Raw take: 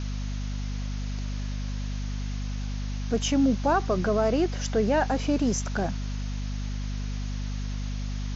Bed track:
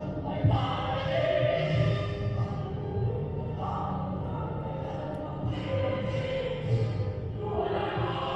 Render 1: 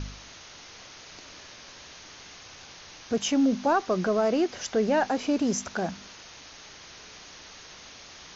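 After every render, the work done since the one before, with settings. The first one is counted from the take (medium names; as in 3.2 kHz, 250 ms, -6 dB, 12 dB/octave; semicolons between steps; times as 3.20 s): de-hum 50 Hz, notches 5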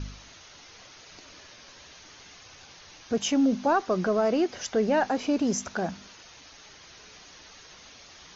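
noise reduction 6 dB, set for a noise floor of -48 dBFS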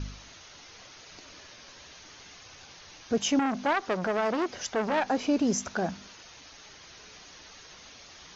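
3.39–5.09 s: transformer saturation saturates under 1.4 kHz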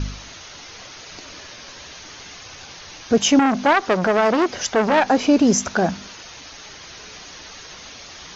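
trim +10.5 dB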